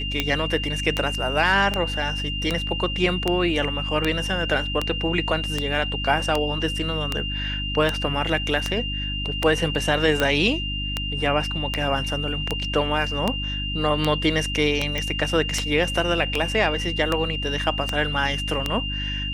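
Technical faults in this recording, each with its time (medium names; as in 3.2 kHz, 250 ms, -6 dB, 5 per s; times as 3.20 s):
hum 50 Hz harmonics 6 -30 dBFS
tick 78 rpm -7 dBFS
whine 2.8 kHz -28 dBFS
14.98 s: pop -12 dBFS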